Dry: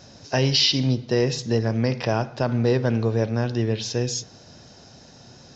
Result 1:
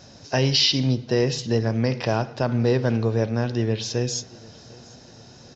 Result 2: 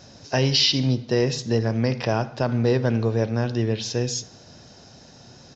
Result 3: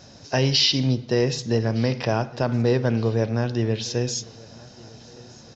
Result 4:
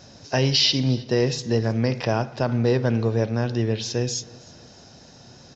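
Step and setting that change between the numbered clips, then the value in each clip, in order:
feedback echo, time: 751, 78, 1213, 318 ms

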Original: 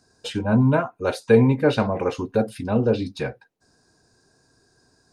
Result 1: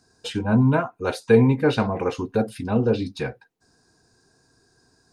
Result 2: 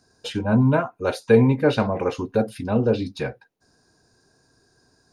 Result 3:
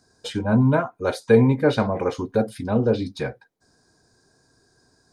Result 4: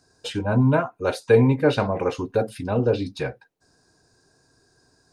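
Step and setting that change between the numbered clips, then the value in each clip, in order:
notch, frequency: 580, 7900, 2700, 220 Hz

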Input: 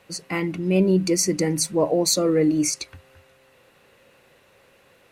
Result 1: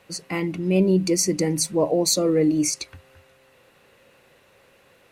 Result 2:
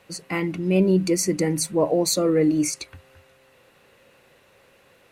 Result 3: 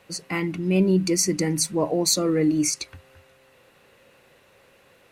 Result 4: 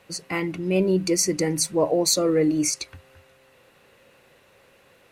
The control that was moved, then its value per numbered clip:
dynamic EQ, frequency: 1500, 5400, 540, 210 Hz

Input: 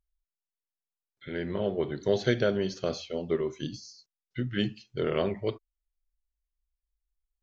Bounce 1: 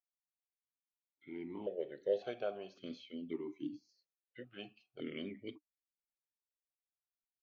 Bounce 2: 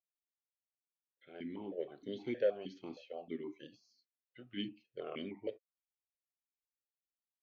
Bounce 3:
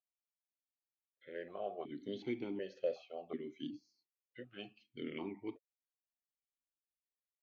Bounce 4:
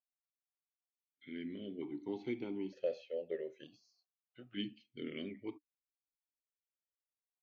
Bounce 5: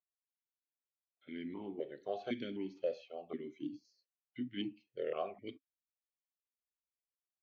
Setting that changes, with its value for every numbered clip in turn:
vowel sequencer, rate: 1.8, 6.4, 2.7, 1.1, 3.9 Hz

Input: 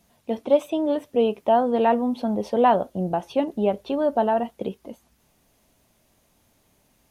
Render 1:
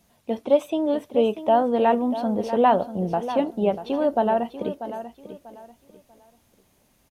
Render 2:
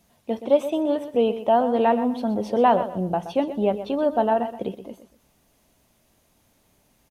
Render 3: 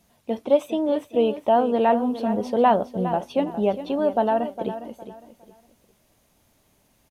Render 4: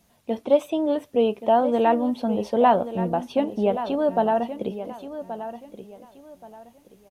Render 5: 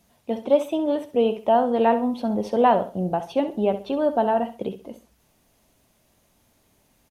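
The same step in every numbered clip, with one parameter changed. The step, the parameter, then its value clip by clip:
feedback echo, time: 641, 124, 409, 1127, 66 ms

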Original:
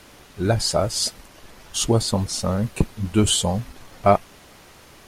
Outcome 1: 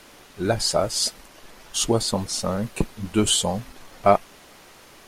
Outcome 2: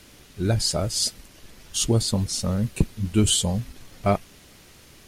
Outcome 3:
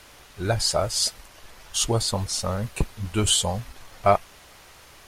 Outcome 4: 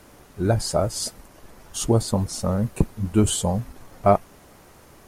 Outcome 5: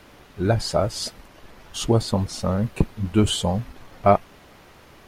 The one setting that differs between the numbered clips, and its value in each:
bell, frequency: 77, 900, 230, 3400, 8800 Hz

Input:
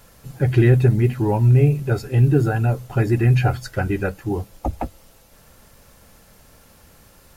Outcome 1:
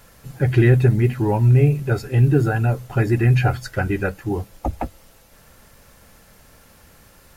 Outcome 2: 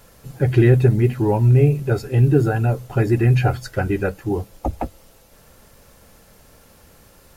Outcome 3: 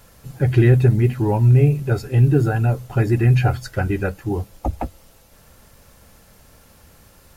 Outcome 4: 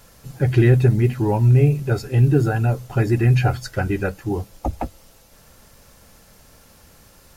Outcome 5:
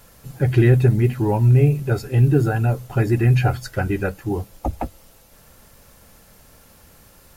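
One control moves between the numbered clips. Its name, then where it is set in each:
bell, frequency: 1800, 440, 76, 5600, 15000 Hz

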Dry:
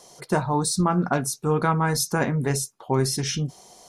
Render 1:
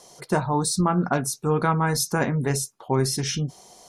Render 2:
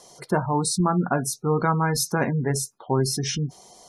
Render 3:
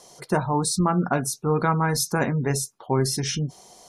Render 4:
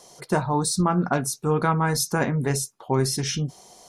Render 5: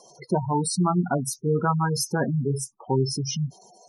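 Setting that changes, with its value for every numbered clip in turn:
spectral gate, under each frame's peak: -50, -25, -35, -60, -10 dB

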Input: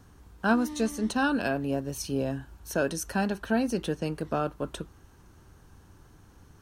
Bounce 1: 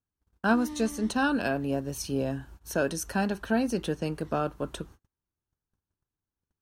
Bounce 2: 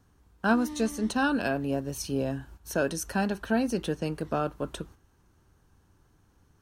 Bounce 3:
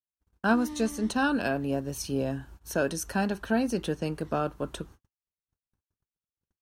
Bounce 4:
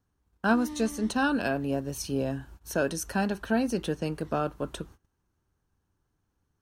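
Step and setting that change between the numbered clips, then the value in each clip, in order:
gate, range: -37, -9, -59, -22 dB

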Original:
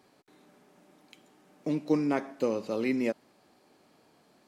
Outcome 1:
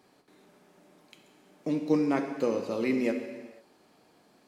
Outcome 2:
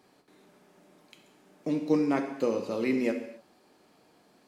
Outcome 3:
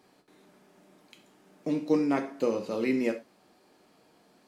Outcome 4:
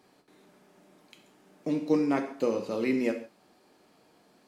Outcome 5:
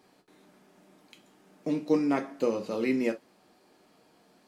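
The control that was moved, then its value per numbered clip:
non-linear reverb, gate: 530, 310, 130, 190, 80 ms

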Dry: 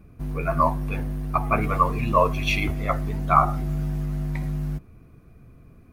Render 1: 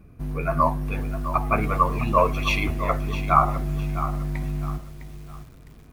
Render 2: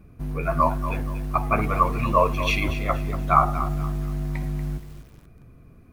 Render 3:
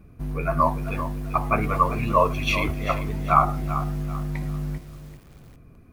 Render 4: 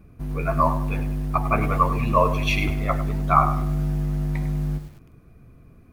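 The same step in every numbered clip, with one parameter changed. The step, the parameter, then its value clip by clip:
lo-fi delay, time: 0.657, 0.237, 0.391, 0.1 s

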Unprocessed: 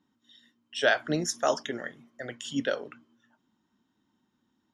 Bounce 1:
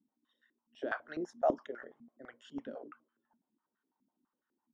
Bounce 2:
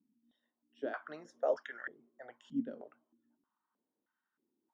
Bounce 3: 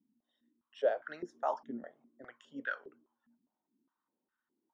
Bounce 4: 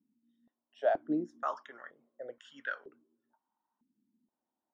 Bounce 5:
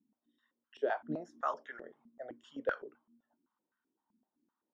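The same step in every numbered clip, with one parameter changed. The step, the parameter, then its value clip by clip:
stepped band-pass, rate: 12, 3.2, 4.9, 2.1, 7.8 Hz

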